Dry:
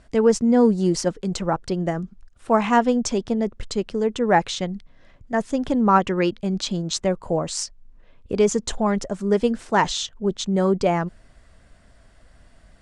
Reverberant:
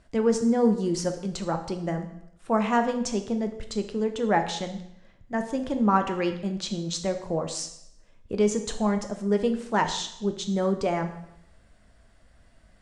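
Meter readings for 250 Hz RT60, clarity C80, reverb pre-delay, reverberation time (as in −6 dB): 0.80 s, 12.5 dB, 5 ms, 0.75 s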